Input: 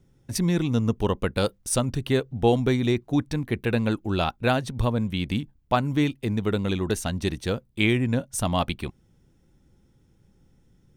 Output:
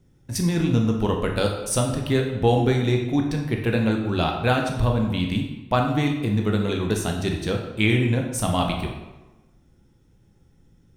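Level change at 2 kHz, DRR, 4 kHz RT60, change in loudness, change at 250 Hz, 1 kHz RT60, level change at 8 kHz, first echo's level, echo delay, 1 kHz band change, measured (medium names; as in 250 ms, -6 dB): +2.5 dB, 1.5 dB, 0.80 s, +2.5 dB, +2.0 dB, 1.1 s, +1.5 dB, no echo, no echo, +2.5 dB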